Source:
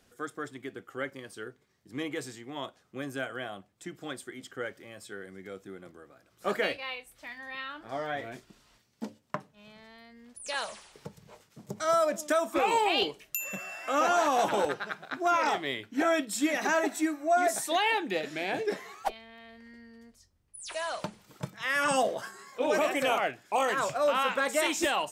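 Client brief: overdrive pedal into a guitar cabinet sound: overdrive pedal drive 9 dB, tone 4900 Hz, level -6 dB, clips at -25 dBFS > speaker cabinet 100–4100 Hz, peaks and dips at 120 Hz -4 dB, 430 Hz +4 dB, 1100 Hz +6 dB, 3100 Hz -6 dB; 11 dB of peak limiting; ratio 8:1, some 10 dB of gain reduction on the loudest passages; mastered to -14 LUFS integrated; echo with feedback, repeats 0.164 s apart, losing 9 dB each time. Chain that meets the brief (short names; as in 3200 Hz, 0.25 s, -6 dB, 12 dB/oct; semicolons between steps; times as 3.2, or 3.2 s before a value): compressor 8:1, threshold -32 dBFS; limiter -28 dBFS; feedback echo 0.164 s, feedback 35%, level -9 dB; overdrive pedal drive 9 dB, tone 4900 Hz, level -6 dB, clips at -25 dBFS; speaker cabinet 100–4100 Hz, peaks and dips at 120 Hz -4 dB, 430 Hz +4 dB, 1100 Hz +6 dB, 3100 Hz -6 dB; gain +22.5 dB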